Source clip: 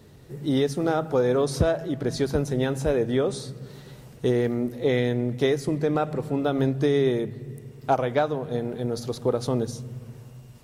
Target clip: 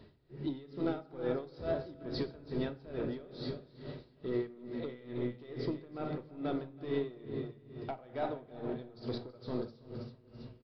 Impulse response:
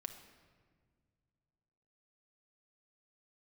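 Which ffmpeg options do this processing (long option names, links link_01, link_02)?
-filter_complex "[0:a]acompressor=threshold=-25dB:ratio=6,aresample=11025,asoftclip=type=tanh:threshold=-21dB,aresample=44100,aecho=1:1:327|654|981|1308|1635|1962:0.355|0.192|0.103|0.0559|0.0302|0.0163[link_01];[1:a]atrim=start_sample=2205,asetrate=79380,aresample=44100[link_02];[link_01][link_02]afir=irnorm=-1:irlink=0,aeval=exprs='val(0)*pow(10,-20*(0.5-0.5*cos(2*PI*2.3*n/s))/20)':channel_layout=same,volume=5dB"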